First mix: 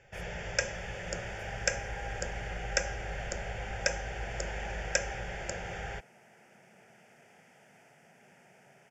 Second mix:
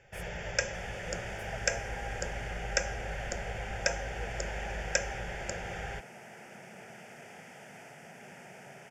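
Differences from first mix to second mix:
speech +10.0 dB; second sound +10.0 dB

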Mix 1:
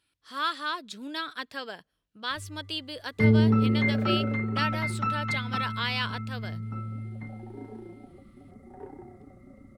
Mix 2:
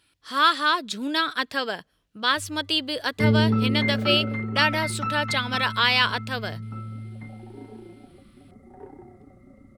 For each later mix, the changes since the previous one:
speech +10.0 dB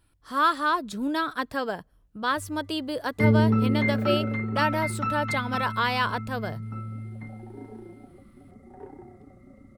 speech: remove frequency weighting D

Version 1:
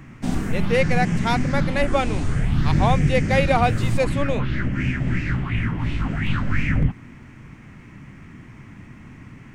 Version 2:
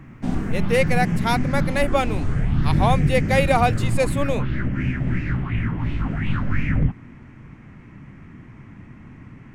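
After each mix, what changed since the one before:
speech: remove tape spacing loss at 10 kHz 20 dB; master: add treble shelf 3.1 kHz -11.5 dB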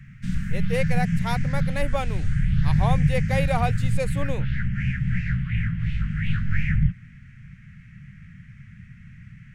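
speech -7.0 dB; background: add elliptic band-stop 180–1600 Hz, stop band 40 dB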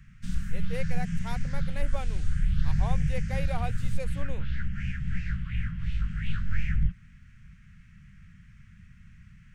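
speech -10.5 dB; background: add ten-band graphic EQ 125 Hz -11 dB, 250 Hz -7 dB, 500 Hz +6 dB, 2 kHz -10 dB

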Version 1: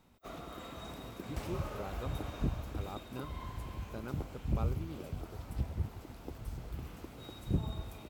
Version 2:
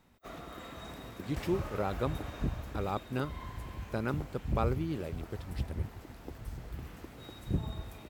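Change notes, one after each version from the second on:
speech +10.0 dB; master: add peaking EQ 1.8 kHz +6 dB 0.38 oct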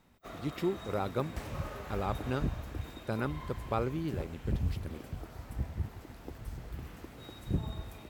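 speech: entry -0.85 s

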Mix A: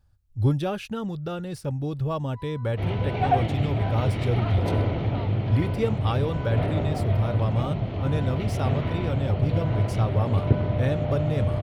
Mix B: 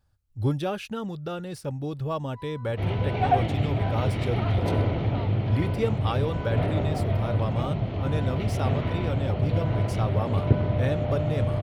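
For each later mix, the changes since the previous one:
speech: add bass shelf 140 Hz -8 dB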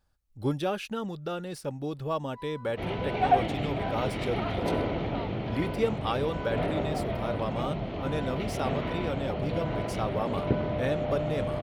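master: add peaking EQ 100 Hz -14.5 dB 0.8 oct

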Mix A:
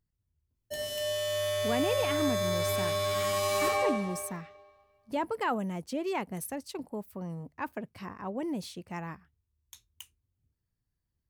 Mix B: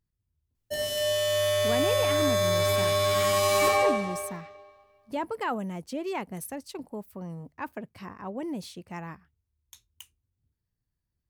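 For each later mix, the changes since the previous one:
background +5.5 dB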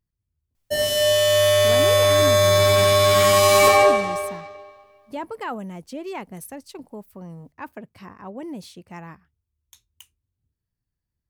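background +8.5 dB

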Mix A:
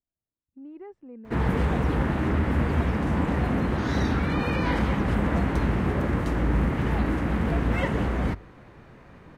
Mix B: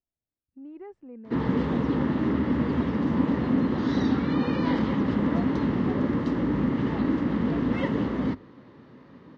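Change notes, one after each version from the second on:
background: add cabinet simulation 140–5100 Hz, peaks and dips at 260 Hz +8 dB, 720 Hz -9 dB, 1.5 kHz -7 dB, 2.4 kHz -9 dB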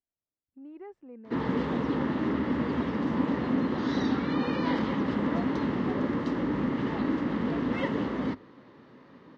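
master: add bass shelf 210 Hz -9 dB

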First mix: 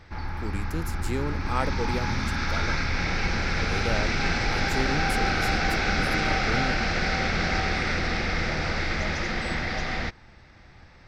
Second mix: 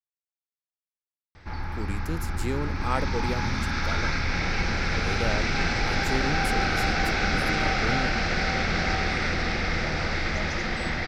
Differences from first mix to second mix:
speech: entry +1.35 s; background: entry +1.35 s

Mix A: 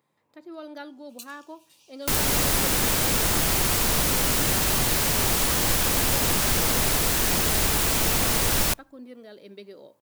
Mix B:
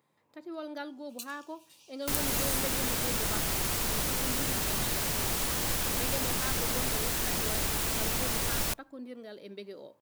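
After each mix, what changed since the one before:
second sound -8.0 dB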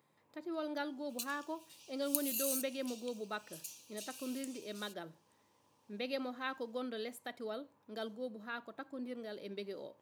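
second sound: muted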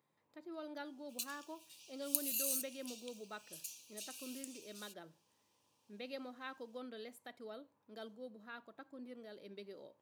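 speech -7.5 dB

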